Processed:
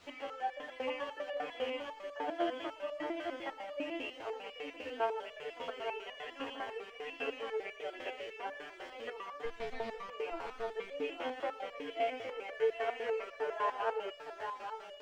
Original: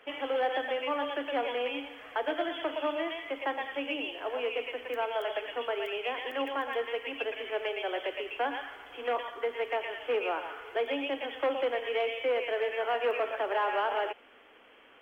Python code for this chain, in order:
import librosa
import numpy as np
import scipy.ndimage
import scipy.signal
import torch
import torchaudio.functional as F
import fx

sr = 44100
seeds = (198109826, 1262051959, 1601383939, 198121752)

y = fx.lower_of_two(x, sr, delay_ms=9.0, at=(9.45, 10.09))
y = fx.bass_treble(y, sr, bass_db=7, treble_db=1)
y = fx.hum_notches(y, sr, base_hz=60, count=10)
y = fx.quant_dither(y, sr, seeds[0], bits=8, dither='triangular')
y = fx.air_absorb(y, sr, metres=150.0)
y = y + 10.0 ** (-5.5 / 20.0) * np.pad(y, (int(864 * sr / 1000.0), 0))[:len(y)]
y = fx.resonator_held(y, sr, hz=10.0, low_hz=86.0, high_hz=580.0)
y = y * librosa.db_to_amplitude(4.5)